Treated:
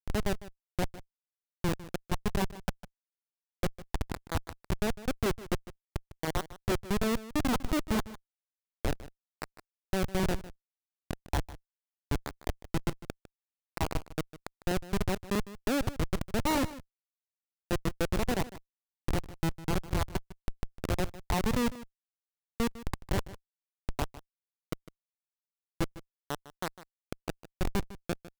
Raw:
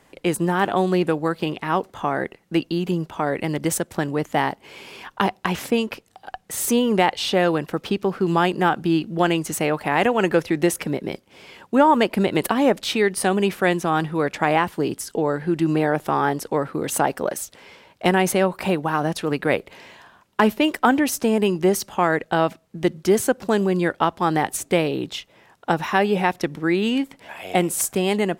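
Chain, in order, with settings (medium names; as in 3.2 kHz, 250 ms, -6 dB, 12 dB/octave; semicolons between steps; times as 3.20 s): reverse the whole clip; low-pass 2.1 kHz 12 dB/octave; Schmitt trigger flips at -15 dBFS; delay 153 ms -16.5 dB; crackling interface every 0.32 s, samples 128, repeat, from 0.63 s; trim -4.5 dB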